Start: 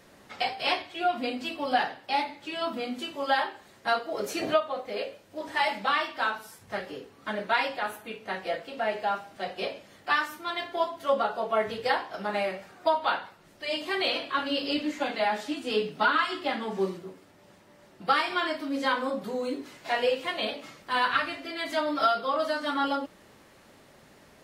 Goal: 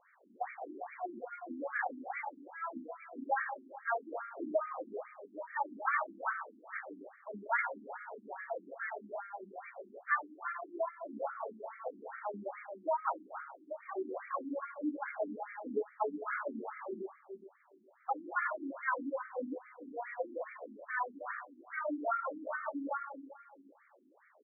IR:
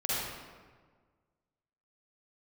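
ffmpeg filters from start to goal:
-filter_complex "[0:a]asettb=1/sr,asplit=3[s0][s1][s2];[s0]atrim=end=11.214[s3];[s1]atrim=start=11.21:end=12.17,asetpts=PTS-STARTPTS,afade=t=in:d=0.004:c=qsin,afade=t=out:st=0.956:d=0.004:c=qsin,acompressor=threshold=0.0398:ratio=3[s4];[s2]atrim=start=12.166[s5];[s3][s4]acrossfade=d=0.004:c1=hsin:c2=qsin[s6];[s6][s5]acrossfade=d=0.004:c1=qsin:c2=hsin,crystalizer=i=3:c=0,asettb=1/sr,asplit=3[s7][s8][s9];[s7]atrim=end=21.264[s10];[s8]atrim=start=21.26:end=21.7,asetpts=PTS-STARTPTS,afade=t=in:d=0.004:c=qsin,afade=t=out:st=0.436:d=0.004:c=qsin,aeval=exprs='0.119*(cos(1*acos(clip(val(0)/0.119,-1,1)))-cos(1*PI/2))+0.0531*(cos(3*acos(clip(val(0)/0.119,-1,1)))-cos(3*PI/2))+0.00596*(cos(5*acos(clip(val(0)/0.119,-1,1)))-cos(5*PI/2))':c=same[s11];[s9]atrim=start=21.696[s12];[s10][s11]acrossfade=d=0.004:c1=hsin:c2=qsin[s13];[s13][s12]acrossfade=d=0.004:c1=qsin:c2=hsin,asplit=2[s14][s15];[s15]adelay=280,lowpass=f=840:p=1,volume=0.398,asplit=2[s16][s17];[s17]adelay=280,lowpass=f=840:p=1,volume=0.26,asplit=2[s18][s19];[s19]adelay=280,lowpass=f=840:p=1,volume=0.26[s20];[s14][s16][s18][s20]amix=inputs=4:normalize=0,asplit=2[s21][s22];[1:a]atrim=start_sample=2205[s23];[s22][s23]afir=irnorm=-1:irlink=0,volume=0.237[s24];[s21][s24]amix=inputs=2:normalize=0,afftfilt=real='re*between(b*sr/1024,250*pow(1700/250,0.5+0.5*sin(2*PI*2.4*pts/sr))/1.41,250*pow(1700/250,0.5+0.5*sin(2*PI*2.4*pts/sr))*1.41)':imag='im*between(b*sr/1024,250*pow(1700/250,0.5+0.5*sin(2*PI*2.4*pts/sr))/1.41,250*pow(1700/250,0.5+0.5*sin(2*PI*2.4*pts/sr))*1.41)':win_size=1024:overlap=0.75,volume=0.422"

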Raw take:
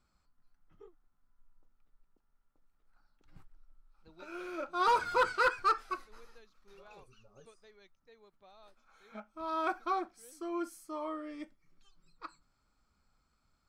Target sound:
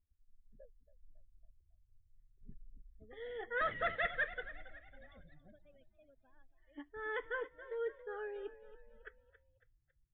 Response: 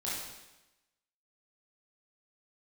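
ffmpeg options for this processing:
-filter_complex "[0:a]equalizer=f=670:t=o:w=1.2:g=-14,asetrate=59535,aresample=44100,afftdn=nr=22:nf=-59,equalizer=f=2800:t=o:w=1.6:g=-11,asplit=2[s0][s1];[s1]asplit=4[s2][s3][s4][s5];[s2]adelay=276,afreqshift=31,volume=0.178[s6];[s3]adelay=552,afreqshift=62,volume=0.0822[s7];[s4]adelay=828,afreqshift=93,volume=0.0376[s8];[s5]adelay=1104,afreqshift=124,volume=0.0174[s9];[s6][s7][s8][s9]amix=inputs=4:normalize=0[s10];[s0][s10]amix=inputs=2:normalize=0,volume=1.58" -ar 8000 -c:a libmp3lame -b:a 32k

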